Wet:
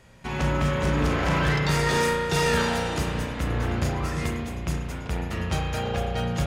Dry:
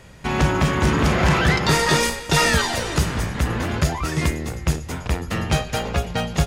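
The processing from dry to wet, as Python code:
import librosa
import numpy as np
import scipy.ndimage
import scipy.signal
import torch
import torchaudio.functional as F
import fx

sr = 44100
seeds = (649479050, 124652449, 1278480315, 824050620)

y = fx.rev_spring(x, sr, rt60_s=1.9, pass_ms=(34,), chirp_ms=45, drr_db=-0.5)
y = np.clip(y, -10.0 ** (-8.0 / 20.0), 10.0 ** (-8.0 / 20.0))
y = y * librosa.db_to_amplitude(-8.5)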